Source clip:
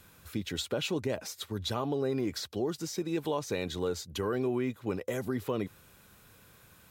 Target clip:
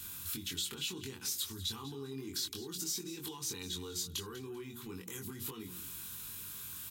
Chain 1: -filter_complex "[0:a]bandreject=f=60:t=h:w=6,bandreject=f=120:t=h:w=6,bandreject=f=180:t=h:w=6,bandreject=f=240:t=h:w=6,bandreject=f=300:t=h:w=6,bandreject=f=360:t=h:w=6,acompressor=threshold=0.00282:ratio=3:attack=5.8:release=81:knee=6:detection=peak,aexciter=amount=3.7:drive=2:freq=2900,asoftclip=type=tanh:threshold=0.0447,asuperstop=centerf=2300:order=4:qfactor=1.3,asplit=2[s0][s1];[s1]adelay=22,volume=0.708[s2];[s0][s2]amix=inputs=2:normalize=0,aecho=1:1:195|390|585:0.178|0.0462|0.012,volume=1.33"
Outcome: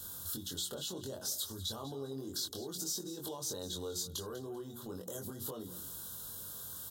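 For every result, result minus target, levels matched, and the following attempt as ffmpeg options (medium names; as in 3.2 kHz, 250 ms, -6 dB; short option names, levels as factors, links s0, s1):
saturation: distortion +21 dB; 2 kHz band -7.5 dB
-filter_complex "[0:a]bandreject=f=60:t=h:w=6,bandreject=f=120:t=h:w=6,bandreject=f=180:t=h:w=6,bandreject=f=240:t=h:w=6,bandreject=f=300:t=h:w=6,bandreject=f=360:t=h:w=6,acompressor=threshold=0.00282:ratio=3:attack=5.8:release=81:knee=6:detection=peak,aexciter=amount=3.7:drive=2:freq=2900,asoftclip=type=tanh:threshold=0.158,asuperstop=centerf=2300:order=4:qfactor=1.3,asplit=2[s0][s1];[s1]adelay=22,volume=0.708[s2];[s0][s2]amix=inputs=2:normalize=0,aecho=1:1:195|390|585:0.178|0.0462|0.012,volume=1.33"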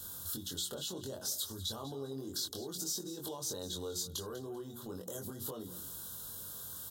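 2 kHz band -7.5 dB
-filter_complex "[0:a]bandreject=f=60:t=h:w=6,bandreject=f=120:t=h:w=6,bandreject=f=180:t=h:w=6,bandreject=f=240:t=h:w=6,bandreject=f=300:t=h:w=6,bandreject=f=360:t=h:w=6,acompressor=threshold=0.00282:ratio=3:attack=5.8:release=81:knee=6:detection=peak,aexciter=amount=3.7:drive=2:freq=2900,asoftclip=type=tanh:threshold=0.158,asuperstop=centerf=600:order=4:qfactor=1.3,asplit=2[s0][s1];[s1]adelay=22,volume=0.708[s2];[s0][s2]amix=inputs=2:normalize=0,aecho=1:1:195|390|585:0.178|0.0462|0.012,volume=1.33"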